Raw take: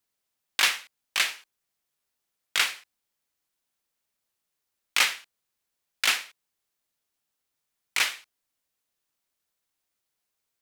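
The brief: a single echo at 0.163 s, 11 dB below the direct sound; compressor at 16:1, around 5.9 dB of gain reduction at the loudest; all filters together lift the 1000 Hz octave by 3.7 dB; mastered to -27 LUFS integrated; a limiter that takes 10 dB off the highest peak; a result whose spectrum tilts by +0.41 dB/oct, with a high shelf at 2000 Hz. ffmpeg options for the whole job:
-af "equalizer=f=1k:t=o:g=6,highshelf=f=2k:g=-3.5,acompressor=threshold=-24dB:ratio=16,alimiter=limit=-20dB:level=0:latency=1,aecho=1:1:163:0.282,volume=9dB"

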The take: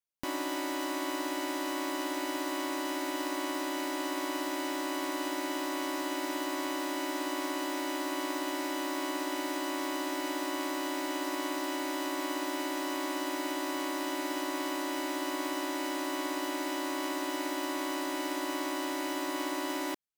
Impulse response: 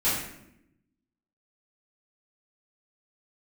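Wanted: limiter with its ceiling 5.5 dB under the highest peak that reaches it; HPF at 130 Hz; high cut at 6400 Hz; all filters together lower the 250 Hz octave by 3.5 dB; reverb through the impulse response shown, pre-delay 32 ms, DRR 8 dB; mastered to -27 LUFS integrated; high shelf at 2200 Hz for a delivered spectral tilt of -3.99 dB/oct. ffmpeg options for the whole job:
-filter_complex "[0:a]highpass=130,lowpass=6.4k,equalizer=f=250:t=o:g=-4.5,highshelf=f=2.2k:g=6,alimiter=limit=-23dB:level=0:latency=1,asplit=2[a][b];[1:a]atrim=start_sample=2205,adelay=32[c];[b][c]afir=irnorm=-1:irlink=0,volume=-20dB[d];[a][d]amix=inputs=2:normalize=0,volume=6dB"

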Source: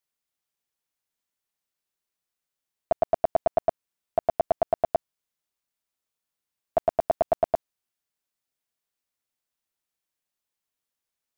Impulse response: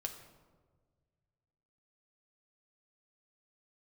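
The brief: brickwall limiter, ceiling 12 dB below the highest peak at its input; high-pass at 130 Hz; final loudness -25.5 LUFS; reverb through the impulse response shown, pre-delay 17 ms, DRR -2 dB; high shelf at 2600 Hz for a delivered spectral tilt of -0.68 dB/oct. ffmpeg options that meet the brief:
-filter_complex "[0:a]highpass=130,highshelf=f=2.6k:g=8.5,alimiter=limit=-23.5dB:level=0:latency=1,asplit=2[a][b];[1:a]atrim=start_sample=2205,adelay=17[c];[b][c]afir=irnorm=-1:irlink=0,volume=3dB[d];[a][d]amix=inputs=2:normalize=0,volume=8.5dB"

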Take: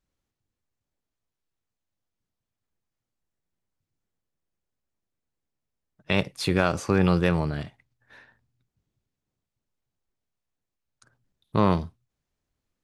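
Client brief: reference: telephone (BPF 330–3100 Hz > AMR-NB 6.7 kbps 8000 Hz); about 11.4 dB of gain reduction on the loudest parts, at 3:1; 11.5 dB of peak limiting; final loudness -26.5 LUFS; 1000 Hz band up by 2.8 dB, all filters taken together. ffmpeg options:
-af "equalizer=f=1k:t=o:g=3.5,acompressor=threshold=-31dB:ratio=3,alimiter=limit=-24dB:level=0:latency=1,highpass=330,lowpass=3.1k,volume=16.5dB" -ar 8000 -c:a libopencore_amrnb -b:a 6700

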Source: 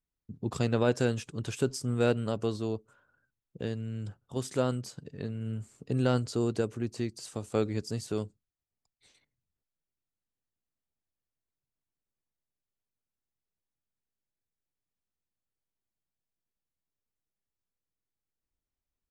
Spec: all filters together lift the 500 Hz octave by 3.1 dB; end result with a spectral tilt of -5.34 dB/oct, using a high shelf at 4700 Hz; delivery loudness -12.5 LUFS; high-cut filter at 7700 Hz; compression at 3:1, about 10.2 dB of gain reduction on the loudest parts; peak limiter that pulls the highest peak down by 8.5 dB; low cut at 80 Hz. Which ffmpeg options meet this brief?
-af "highpass=80,lowpass=7.7k,equalizer=f=500:t=o:g=3.5,highshelf=f=4.7k:g=6.5,acompressor=threshold=-33dB:ratio=3,volume=27.5dB,alimiter=limit=0dB:level=0:latency=1"

